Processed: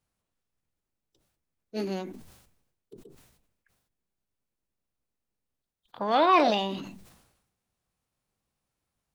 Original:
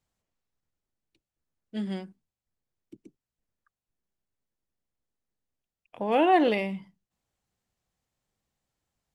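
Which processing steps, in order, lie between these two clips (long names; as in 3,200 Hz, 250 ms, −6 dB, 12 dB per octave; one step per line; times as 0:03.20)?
formants moved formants +5 semitones
level that may fall only so fast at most 62 dB per second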